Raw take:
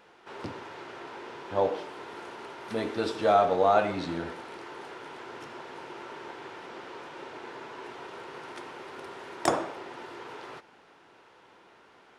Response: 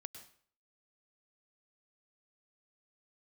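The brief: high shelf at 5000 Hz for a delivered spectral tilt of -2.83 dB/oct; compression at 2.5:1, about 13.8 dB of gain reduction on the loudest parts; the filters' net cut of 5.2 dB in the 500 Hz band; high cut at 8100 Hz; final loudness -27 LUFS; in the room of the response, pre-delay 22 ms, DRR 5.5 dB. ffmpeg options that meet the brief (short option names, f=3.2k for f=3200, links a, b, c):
-filter_complex "[0:a]lowpass=8.1k,equalizer=f=500:t=o:g=-7,highshelf=f=5k:g=-5.5,acompressor=threshold=-42dB:ratio=2.5,asplit=2[a][b];[1:a]atrim=start_sample=2205,adelay=22[c];[b][c]afir=irnorm=-1:irlink=0,volume=-0.5dB[d];[a][d]amix=inputs=2:normalize=0,volume=16.5dB"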